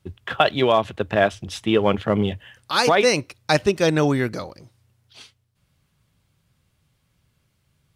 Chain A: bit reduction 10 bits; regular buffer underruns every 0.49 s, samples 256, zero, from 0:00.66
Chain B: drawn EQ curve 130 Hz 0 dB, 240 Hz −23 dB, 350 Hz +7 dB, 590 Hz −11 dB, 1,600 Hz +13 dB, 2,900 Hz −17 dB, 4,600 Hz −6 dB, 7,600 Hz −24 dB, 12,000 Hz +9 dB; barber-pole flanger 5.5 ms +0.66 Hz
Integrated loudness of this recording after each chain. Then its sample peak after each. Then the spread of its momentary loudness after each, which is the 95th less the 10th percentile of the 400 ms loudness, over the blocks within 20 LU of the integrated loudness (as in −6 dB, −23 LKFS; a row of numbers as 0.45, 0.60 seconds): −20.5, −22.0 LKFS; −3.5, −2.5 dBFS; 11, 11 LU